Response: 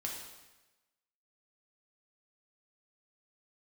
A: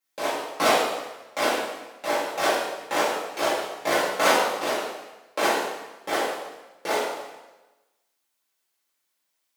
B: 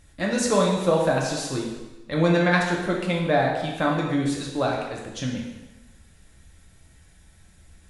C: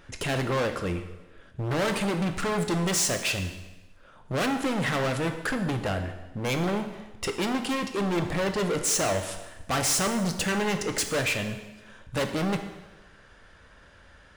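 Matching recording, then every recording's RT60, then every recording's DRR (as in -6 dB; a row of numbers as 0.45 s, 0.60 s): B; 1.1 s, 1.1 s, 1.1 s; -12.0 dB, -2.0 dB, 5.5 dB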